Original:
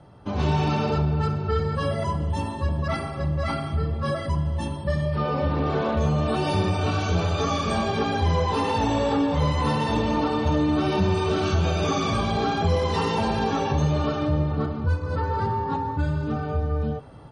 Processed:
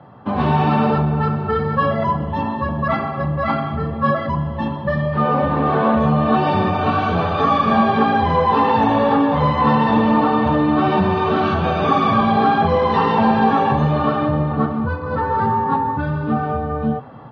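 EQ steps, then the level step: speaker cabinet 110–3800 Hz, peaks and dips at 130 Hz +6 dB, 230 Hz +10 dB, 510 Hz +4 dB, 760 Hz +8 dB, 1100 Hz +10 dB, 1700 Hz +7 dB; +2.5 dB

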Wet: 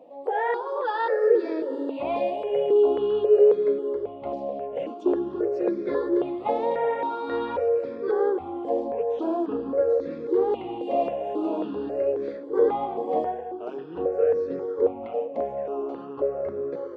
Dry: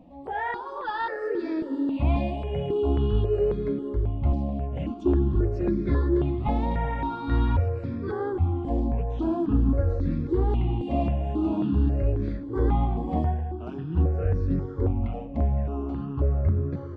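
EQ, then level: resonant high-pass 480 Hz, resonance Q 4.9; 0.0 dB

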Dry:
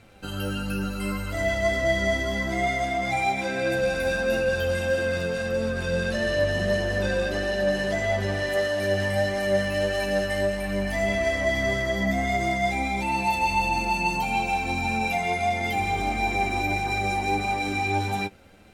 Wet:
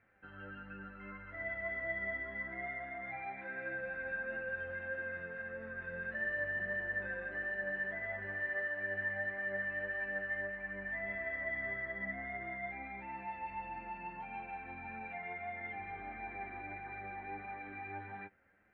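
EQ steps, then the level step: band-pass 1800 Hz, Q 6.1; air absorption 430 m; tilt -4.5 dB/oct; +2.5 dB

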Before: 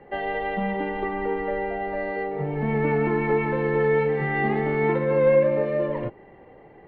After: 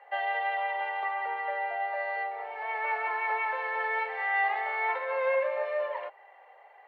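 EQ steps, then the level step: steep high-pass 640 Hz 36 dB/oct; 0.0 dB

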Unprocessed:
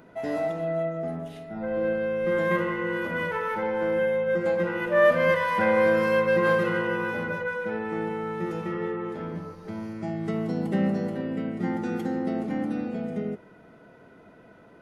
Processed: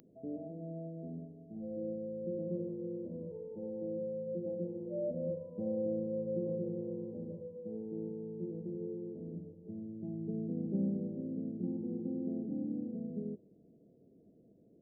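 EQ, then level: Gaussian blur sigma 24 samples; tilt +4 dB/oct; +3.0 dB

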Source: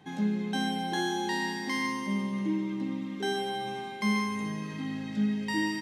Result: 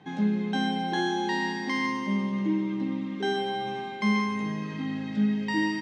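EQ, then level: HPF 98 Hz; air absorption 110 m; +3.5 dB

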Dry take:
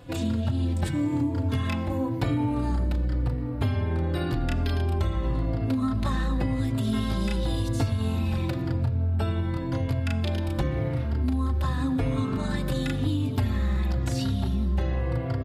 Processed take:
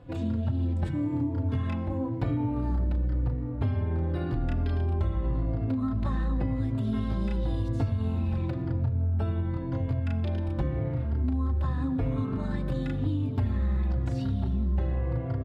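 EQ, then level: LPF 1300 Hz 6 dB/oct; low shelf 140 Hz +3 dB; -3.5 dB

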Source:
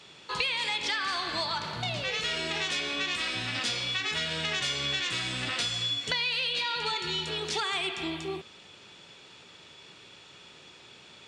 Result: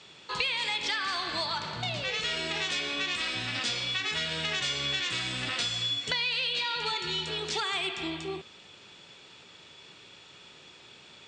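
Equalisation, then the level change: elliptic low-pass 8300 Hz, stop band 60 dB; 0.0 dB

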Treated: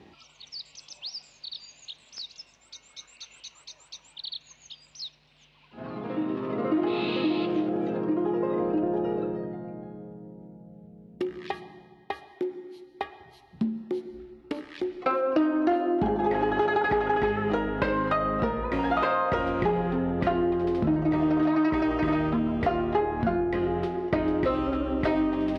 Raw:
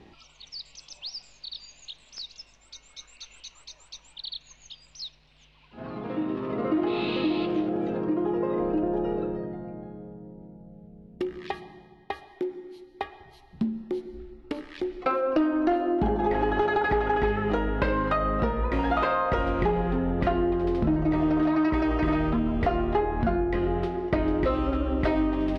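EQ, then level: HPF 90 Hz 12 dB/oct; 0.0 dB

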